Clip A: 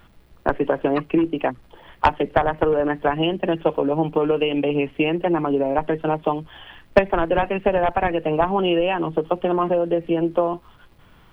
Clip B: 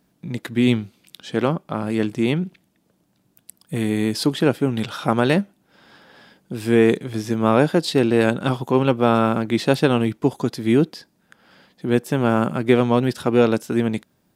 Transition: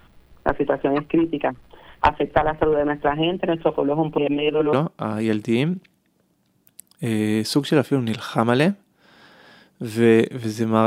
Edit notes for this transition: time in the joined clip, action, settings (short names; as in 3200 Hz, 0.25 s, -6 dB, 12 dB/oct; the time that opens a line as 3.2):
clip A
4.18–4.73 reverse
4.73 switch to clip B from 1.43 s